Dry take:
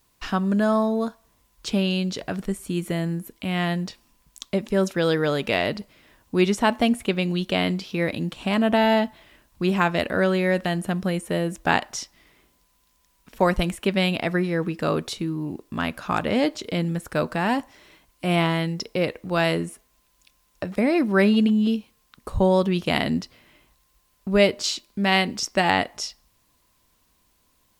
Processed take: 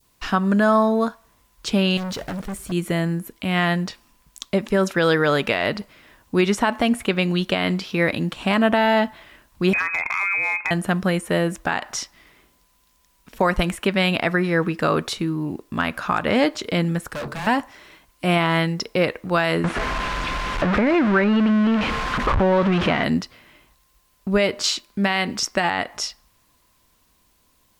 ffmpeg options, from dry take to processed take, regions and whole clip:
ffmpeg -i in.wav -filter_complex "[0:a]asettb=1/sr,asplit=3[link_01][link_02][link_03];[link_01]atrim=end=1.974[link_04];[link_02]atrim=start=1.97:end=2.72,asetpts=PTS-STARTPTS,afade=type=in:duration=0.004:curve=qsin,afade=type=out:start_time=0.746:duration=0.004:curve=qsin,equalizer=frequency=70:width=0.46:gain=8.5,volume=30dB,asoftclip=hard,volume=-30dB,acrusher=bits=7:mix=0:aa=0.5[link_05];[link_03]atrim=start=2.716[link_06];[link_04][link_05]acrossfade=duration=0.004:curve1=hsin:curve2=qsin[link_07];[link_07][link_06]acrossfade=duration=0.004:curve1=qsin:curve2=hsin,asettb=1/sr,asplit=3[link_08][link_09][link_10];[link_08]atrim=end=9.734[link_11];[link_09]atrim=start=9.73:end=10.71,asetpts=PTS-STARTPTS,afade=type=in:duration=0.004:curve=qsin,afade=type=out:start_time=0.976:duration=0.004:curve=qsin,lowpass=frequency=2300:width_type=q:width=0.5098,lowpass=frequency=2300:width_type=q:width=0.6013,lowpass=frequency=2300:width_type=q:width=0.9,lowpass=frequency=2300:width_type=q:width=2.563,afreqshift=-2700,acompressor=threshold=-25dB:ratio=10:attack=3.2:release=140:knee=1:detection=peak,asoftclip=type=hard:threshold=-22.5dB[link_12];[link_10]atrim=start=10.706[link_13];[link_11][link_12]acrossfade=duration=0.004:curve1=hsin:curve2=qsin[link_14];[link_14][link_13]acrossfade=duration=0.004:curve1=qsin:curve2=hsin,asettb=1/sr,asplit=3[link_15][link_16][link_17];[link_15]atrim=end=17.074[link_18];[link_16]atrim=start=17.07:end=17.47,asetpts=PTS-STARTPTS,afade=type=in:duration=0.004:curve=qsin,afade=type=out:start_time=0.396:duration=0.004:curve=qsin,bandreject=frequency=50:width_type=h:width=6,bandreject=frequency=100:width_type=h:width=6,bandreject=frequency=150:width_type=h:width=6,bandreject=frequency=200:width_type=h:width=6,bandreject=frequency=250:width_type=h:width=6,bandreject=frequency=300:width_type=h:width=6,bandreject=frequency=350:width_type=h:width=6,bandreject=frequency=400:width_type=h:width=6,bandreject=frequency=450:width_type=h:width=6,afreqshift=-16,volume=31.5dB,asoftclip=hard,volume=-31.5dB[link_19];[link_17]atrim=start=17.466[link_20];[link_18][link_19]acrossfade=duration=0.004:curve1=hsin:curve2=qsin[link_21];[link_21][link_20]acrossfade=duration=0.004:curve1=qsin:curve2=hsin,asettb=1/sr,asplit=3[link_22][link_23][link_24];[link_22]atrim=end=19.644[link_25];[link_23]atrim=start=19.64:end=23.04,asetpts=PTS-STARTPTS,afade=type=in:duration=0.004:curve=qsin,afade=type=out:start_time=3.396:duration=0.004:curve=qsin,aeval=exprs='val(0)+0.5*0.106*sgn(val(0))':channel_layout=same,lowpass=2700,acompressor=threshold=-20dB:ratio=3:attack=3.2:release=140:knee=1:detection=peak[link_26];[link_24]atrim=start=23.036[link_27];[link_25][link_26]acrossfade=duration=0.004:curve1=hsin:curve2=qsin[link_28];[link_28][link_27]acrossfade=duration=0.004:curve1=qsin:curve2=hsin,adynamicequalizer=threshold=0.0141:dfrequency=1400:dqfactor=0.84:tfrequency=1400:tqfactor=0.84:attack=5:release=100:ratio=0.375:range=3.5:mode=boostabove:tftype=bell,alimiter=limit=-11.5dB:level=0:latency=1:release=118,volume=3dB" out.wav

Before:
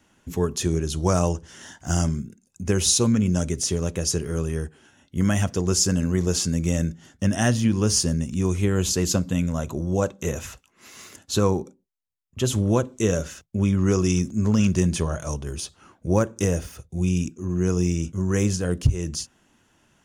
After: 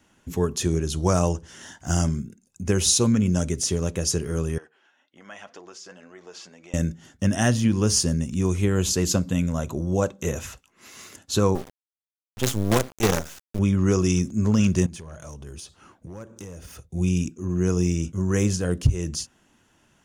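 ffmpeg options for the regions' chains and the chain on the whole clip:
ffmpeg -i in.wav -filter_complex "[0:a]asettb=1/sr,asplit=3[link_01][link_02][link_03];[link_01]atrim=end=4.584[link_04];[link_02]atrim=start=4.58:end=6.74,asetpts=PTS-STARTPTS,afade=type=in:duration=0.004:curve=qsin,afade=type=out:start_time=2.156:duration=0.004:curve=qsin,acompressor=threshold=-23dB:ratio=6:attack=3.2:release=140:knee=1:detection=peak,flanger=delay=2.7:depth=3.5:regen=68:speed=1.9:shape=triangular,highpass=610,lowpass=3400[link_05];[link_03]atrim=start=6.736[link_06];[link_04][link_05]acrossfade=duration=0.004:curve1=hsin:curve2=qsin[link_07];[link_07][link_06]acrossfade=duration=0.004:curve1=qsin:curve2=hsin,asettb=1/sr,asplit=3[link_08][link_09][link_10];[link_08]atrim=end=11.554[link_11];[link_09]atrim=start=11.55:end=13.59,asetpts=PTS-STARTPTS,afade=type=in:duration=0.004:curve=qsin,afade=type=out:start_time=2.036:duration=0.004:curve=qsin,highpass=61,acrusher=bits=4:dc=4:mix=0:aa=0.000001[link_12];[link_10]atrim=start=13.586[link_13];[link_11][link_12]acrossfade=duration=0.004:curve1=hsin:curve2=qsin[link_14];[link_14][link_13]acrossfade=duration=0.004:curve1=qsin:curve2=hsin,asettb=1/sr,asplit=3[link_15][link_16][link_17];[link_15]atrim=end=14.864[link_18];[link_16]atrim=start=14.86:end=16.84,asetpts=PTS-STARTPTS,afade=type=in:duration=0.004:curve=qsin,afade=type=out:start_time=1.976:duration=0.004:curve=qsin,acompressor=threshold=-37dB:ratio=4:attack=3.2:release=140:knee=1:detection=peak,asoftclip=type=hard:threshold=-31.5dB[link_19];[link_17]atrim=start=16.836[link_20];[link_18][link_19]acrossfade=duration=0.004:curve1=hsin:curve2=qsin[link_21];[link_21][link_20]acrossfade=duration=0.004:curve1=qsin:curve2=hsin" out.wav

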